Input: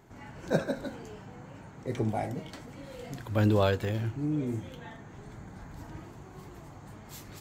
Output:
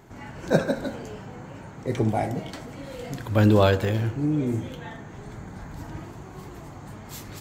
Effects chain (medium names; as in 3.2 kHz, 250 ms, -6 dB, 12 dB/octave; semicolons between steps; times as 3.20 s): tape echo 64 ms, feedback 81%, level -16 dB; trim +6.5 dB